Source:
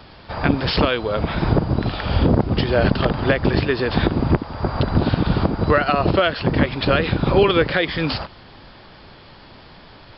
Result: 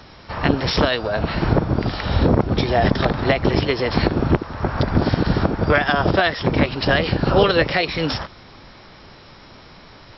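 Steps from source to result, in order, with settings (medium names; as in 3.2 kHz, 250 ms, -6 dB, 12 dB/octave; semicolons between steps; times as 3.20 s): formant shift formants +3 st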